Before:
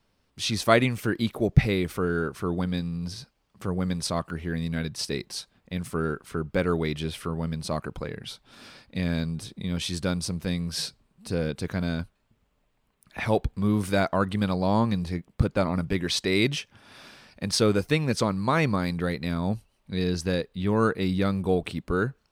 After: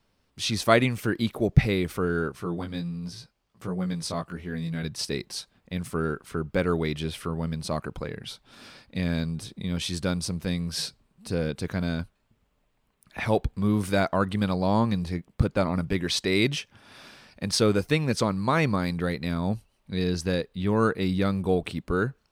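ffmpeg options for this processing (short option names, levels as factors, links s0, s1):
-filter_complex "[0:a]asettb=1/sr,asplit=3[s0][s1][s2];[s0]atrim=end=2.324[s3];[s1]atrim=start=2.32:end=4.83,asetpts=PTS-STARTPTS,afade=t=in:d=0.004:c=qsin,afade=t=out:st=2.506:d=0.004:c=qsin,flanger=delay=16:depth=3.2:speed=1.4[s4];[s2]atrim=start=4.826[s5];[s3][s4]acrossfade=d=0.004:c1=hsin:c2=qsin[s6];[s6][s5]acrossfade=d=0.004:c1=qsin:c2=hsin"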